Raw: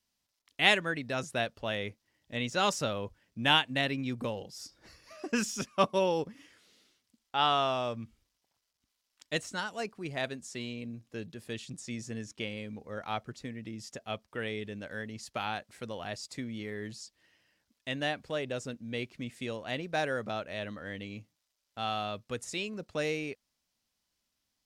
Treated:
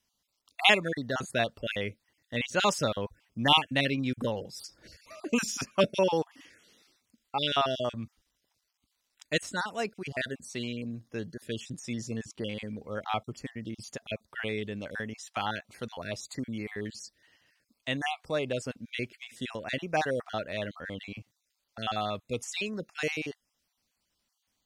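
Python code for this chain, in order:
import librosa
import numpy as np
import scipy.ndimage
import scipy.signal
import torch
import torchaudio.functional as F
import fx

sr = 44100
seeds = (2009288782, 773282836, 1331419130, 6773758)

y = fx.spec_dropout(x, sr, seeds[0], share_pct=31)
y = F.gain(torch.from_numpy(y), 4.0).numpy()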